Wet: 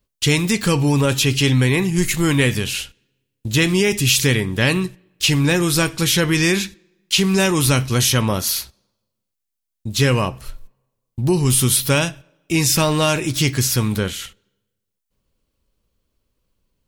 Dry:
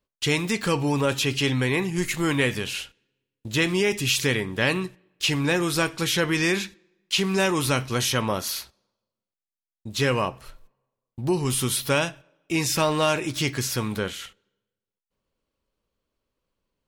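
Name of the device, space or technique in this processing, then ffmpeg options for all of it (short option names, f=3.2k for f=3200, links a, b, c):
smiley-face EQ: -af "lowshelf=f=170:g=7.5,equalizer=f=850:t=o:w=2.9:g=-4,highshelf=f=6.3k:g=5.5,volume=6dB"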